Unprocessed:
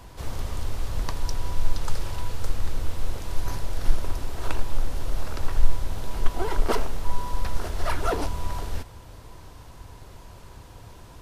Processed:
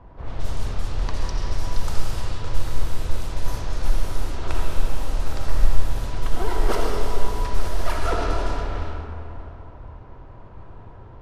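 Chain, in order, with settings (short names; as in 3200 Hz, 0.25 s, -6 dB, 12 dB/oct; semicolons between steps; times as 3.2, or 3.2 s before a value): digital reverb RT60 3.3 s, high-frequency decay 0.95×, pre-delay 25 ms, DRR -2 dB; low-pass opened by the level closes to 1200 Hz, open at -11.5 dBFS; gain -1 dB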